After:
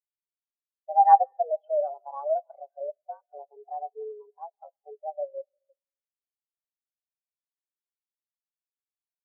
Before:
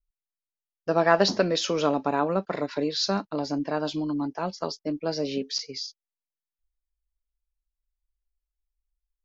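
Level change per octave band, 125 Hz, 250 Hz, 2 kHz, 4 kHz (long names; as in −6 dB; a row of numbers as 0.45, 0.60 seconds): below −40 dB, below −40 dB, below −20 dB, below −40 dB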